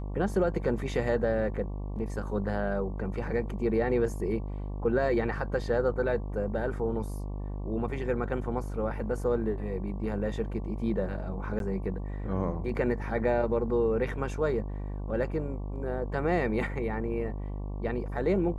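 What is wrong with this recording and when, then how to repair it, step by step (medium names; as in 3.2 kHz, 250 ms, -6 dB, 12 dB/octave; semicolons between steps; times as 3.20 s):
buzz 50 Hz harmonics 23 -35 dBFS
11.59–11.60 s: dropout 12 ms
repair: de-hum 50 Hz, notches 23; interpolate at 11.59 s, 12 ms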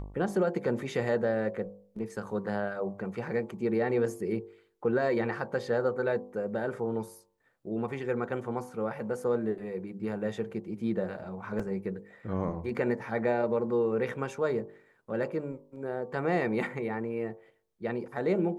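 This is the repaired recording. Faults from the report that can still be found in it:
nothing left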